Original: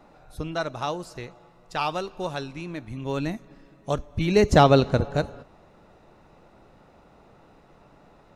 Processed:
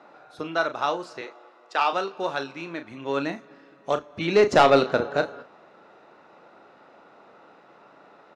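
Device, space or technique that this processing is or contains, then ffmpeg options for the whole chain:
intercom: -filter_complex "[0:a]asettb=1/sr,asplit=3[link_01][link_02][link_03];[link_01]atrim=end=1.214[link_04];[link_02]atrim=start=1.21:end=1.93,asetpts=PTS-STARTPTS,afade=type=in:duration=0.004:curve=qsin,afade=type=out:start_time=0.716:duration=0.004:curve=qsin,highpass=frequency=270:width=0.5412,highpass=frequency=270:width=1.3066[link_05];[link_03]atrim=start=1.926[link_06];[link_04][link_05]acrossfade=duration=0.004:curve1=hsin:curve2=qsin[link_07];[link_07][link_06]acrossfade=duration=0.004:curve1=qsin:curve2=hsin,highpass=320,lowpass=4900,equalizer=frequency=1400:width_type=o:width=0.5:gain=5,asoftclip=type=tanh:threshold=-11dB,asplit=2[link_08][link_09];[link_09]adelay=36,volume=-9.5dB[link_10];[link_08][link_10]amix=inputs=2:normalize=0,volume=3dB"

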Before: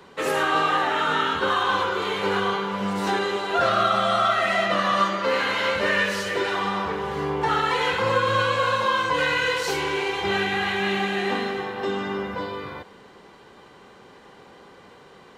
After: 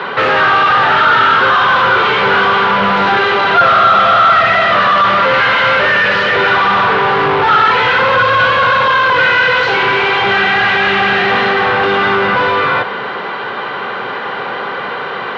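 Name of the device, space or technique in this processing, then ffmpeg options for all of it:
overdrive pedal into a guitar cabinet: -filter_complex "[0:a]asplit=2[link_01][link_02];[link_02]highpass=frequency=720:poles=1,volume=35dB,asoftclip=type=tanh:threshold=-8dB[link_03];[link_01][link_03]amix=inputs=2:normalize=0,lowpass=frequency=3200:poles=1,volume=-6dB,highpass=100,equalizer=frequency=120:width_type=q:width=4:gain=8,equalizer=frequency=310:width_type=q:width=4:gain=-5,equalizer=frequency=1400:width_type=q:width=4:gain=6,lowpass=frequency=3800:width=0.5412,lowpass=frequency=3800:width=1.3066,volume=2.5dB"

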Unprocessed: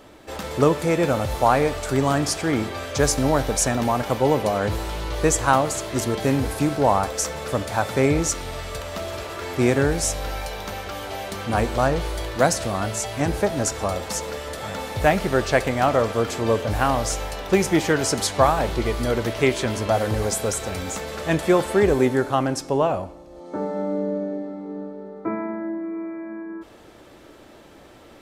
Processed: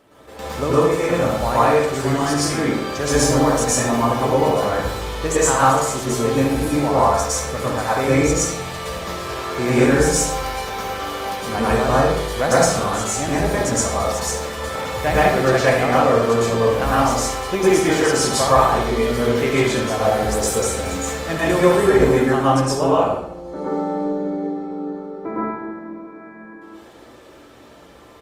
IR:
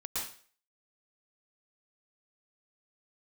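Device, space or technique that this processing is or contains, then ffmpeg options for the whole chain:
far-field microphone of a smart speaker: -filter_complex "[0:a]asplit=3[link_01][link_02][link_03];[link_01]afade=type=out:start_time=2.12:duration=0.02[link_04];[link_02]asplit=2[link_05][link_06];[link_06]adelay=48,volume=-9dB[link_07];[link_05][link_07]amix=inputs=2:normalize=0,afade=type=in:start_time=2.12:duration=0.02,afade=type=out:start_time=3.5:duration=0.02[link_08];[link_03]afade=type=in:start_time=3.5:duration=0.02[link_09];[link_04][link_08][link_09]amix=inputs=3:normalize=0,asplit=2[link_10][link_11];[link_11]adelay=69,lowpass=frequency=3300:poles=1,volume=-6.5dB,asplit=2[link_12][link_13];[link_13]adelay=69,lowpass=frequency=3300:poles=1,volume=0.53,asplit=2[link_14][link_15];[link_15]adelay=69,lowpass=frequency=3300:poles=1,volume=0.53,asplit=2[link_16][link_17];[link_17]adelay=69,lowpass=frequency=3300:poles=1,volume=0.53,asplit=2[link_18][link_19];[link_19]adelay=69,lowpass=frequency=3300:poles=1,volume=0.53,asplit=2[link_20][link_21];[link_21]adelay=69,lowpass=frequency=3300:poles=1,volume=0.53,asplit=2[link_22][link_23];[link_23]adelay=69,lowpass=frequency=3300:poles=1,volume=0.53[link_24];[link_10][link_12][link_14][link_16][link_18][link_20][link_22][link_24]amix=inputs=8:normalize=0[link_25];[1:a]atrim=start_sample=2205[link_26];[link_25][link_26]afir=irnorm=-1:irlink=0,highpass=frequency=94:poles=1,dynaudnorm=framelen=190:gausssize=31:maxgain=11.5dB,volume=-1dB" -ar 48000 -c:a libopus -b:a 32k

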